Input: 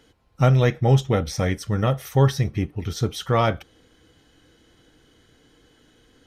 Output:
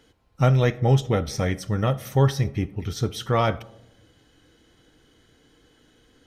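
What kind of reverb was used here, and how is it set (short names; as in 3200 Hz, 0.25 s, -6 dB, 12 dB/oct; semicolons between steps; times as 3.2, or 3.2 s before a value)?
digital reverb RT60 0.92 s, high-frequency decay 0.25×, pre-delay 20 ms, DRR 19.5 dB; gain -1.5 dB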